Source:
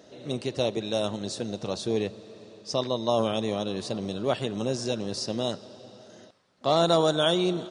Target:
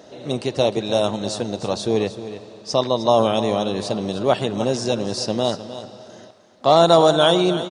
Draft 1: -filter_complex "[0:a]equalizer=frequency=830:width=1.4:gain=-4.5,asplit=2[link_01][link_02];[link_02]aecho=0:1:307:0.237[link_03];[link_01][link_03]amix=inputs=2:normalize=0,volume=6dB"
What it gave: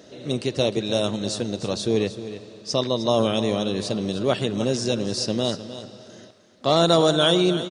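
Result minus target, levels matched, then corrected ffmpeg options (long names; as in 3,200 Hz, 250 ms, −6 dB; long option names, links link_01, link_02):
1,000 Hz band −4.5 dB
-filter_complex "[0:a]equalizer=frequency=830:width=1.4:gain=5,asplit=2[link_01][link_02];[link_02]aecho=0:1:307:0.237[link_03];[link_01][link_03]amix=inputs=2:normalize=0,volume=6dB"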